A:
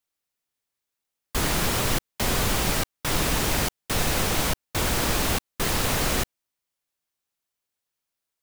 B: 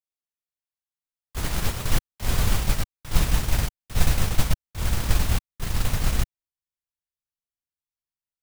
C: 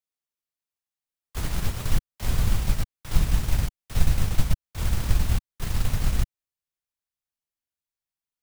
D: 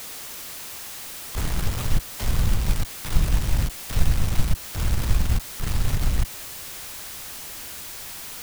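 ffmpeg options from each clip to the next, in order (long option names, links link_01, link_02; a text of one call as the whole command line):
ffmpeg -i in.wav -af "agate=range=-16dB:threshold=-22dB:ratio=16:detection=peak,asubboost=boost=5:cutoff=150" out.wav
ffmpeg -i in.wav -filter_complex "[0:a]acrossover=split=240[link_01][link_02];[link_02]acompressor=threshold=-35dB:ratio=3[link_03];[link_01][link_03]amix=inputs=2:normalize=0" out.wav
ffmpeg -i in.wav -af "aeval=exprs='val(0)+0.5*0.0422*sgn(val(0))':channel_layout=same" out.wav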